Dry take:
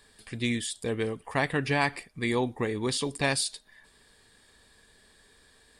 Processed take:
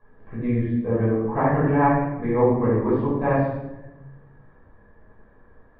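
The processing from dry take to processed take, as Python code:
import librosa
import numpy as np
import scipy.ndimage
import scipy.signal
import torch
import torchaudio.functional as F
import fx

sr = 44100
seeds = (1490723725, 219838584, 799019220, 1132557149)

y = scipy.signal.sosfilt(scipy.signal.butter(4, 1300.0, 'lowpass', fs=sr, output='sos'), x)
y = fx.room_shoebox(y, sr, seeds[0], volume_m3=400.0, walls='mixed', distance_m=5.4)
y = F.gain(torch.from_numpy(y), -4.0).numpy()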